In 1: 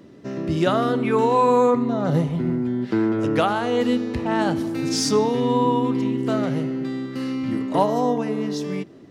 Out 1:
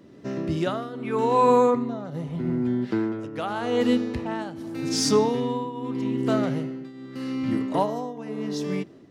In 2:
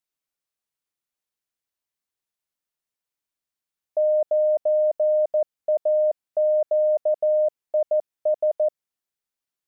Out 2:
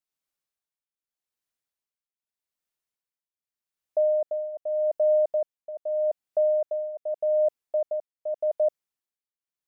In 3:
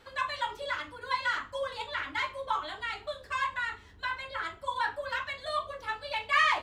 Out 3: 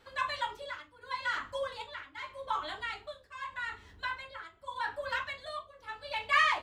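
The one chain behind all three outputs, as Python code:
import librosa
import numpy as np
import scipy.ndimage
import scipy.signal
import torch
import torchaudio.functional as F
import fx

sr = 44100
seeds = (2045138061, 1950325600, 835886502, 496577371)

y = fx.tremolo_shape(x, sr, shape='triangle', hz=0.83, depth_pct=85)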